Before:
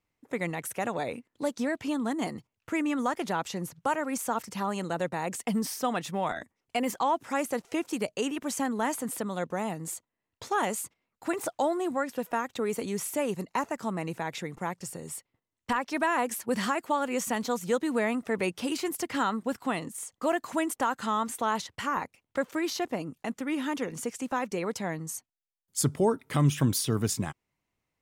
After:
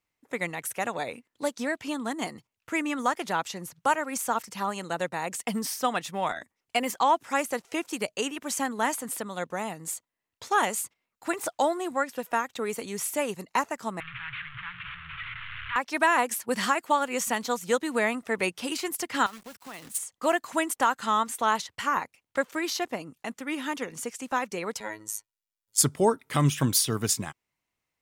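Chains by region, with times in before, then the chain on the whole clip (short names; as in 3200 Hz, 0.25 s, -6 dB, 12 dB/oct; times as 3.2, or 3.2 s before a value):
14–15.76 delta modulation 16 kbps, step -28 dBFS + elliptic band-stop 130–1300 Hz, stop band 60 dB + notches 50/100/150/200/250/300/350/400/450/500 Hz
19.26–19.98 compressor 8:1, threshold -36 dBFS + companded quantiser 4-bit + three-band expander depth 100%
24.8–25.78 comb 2.1 ms, depth 78% + robotiser 107 Hz
whole clip: tilt shelf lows -4 dB, about 700 Hz; upward expander 1.5:1, over -36 dBFS; gain +4.5 dB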